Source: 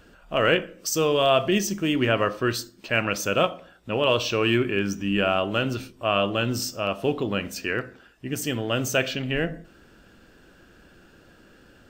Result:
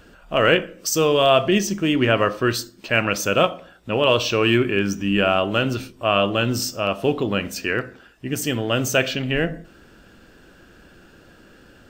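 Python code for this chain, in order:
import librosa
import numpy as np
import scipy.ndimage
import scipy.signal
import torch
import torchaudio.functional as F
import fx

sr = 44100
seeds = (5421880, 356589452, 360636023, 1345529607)

y = fx.high_shelf(x, sr, hz=7900.0, db=-6.0, at=(1.4, 2.09))
y = y * 10.0 ** (4.0 / 20.0)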